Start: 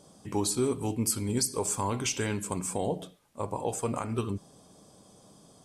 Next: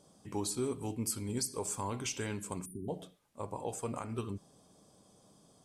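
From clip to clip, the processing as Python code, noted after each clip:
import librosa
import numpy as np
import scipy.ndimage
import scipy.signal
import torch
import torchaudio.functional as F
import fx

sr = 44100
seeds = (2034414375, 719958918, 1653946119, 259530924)

y = fx.spec_erase(x, sr, start_s=2.65, length_s=0.24, low_hz=410.0, high_hz=9100.0)
y = F.gain(torch.from_numpy(y), -7.0).numpy()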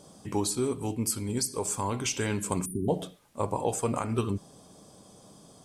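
y = fx.rider(x, sr, range_db=10, speed_s=0.5)
y = F.gain(torch.from_numpy(y), 8.0).numpy()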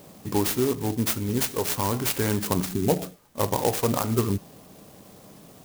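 y = fx.clock_jitter(x, sr, seeds[0], jitter_ms=0.091)
y = F.gain(torch.from_numpy(y), 5.0).numpy()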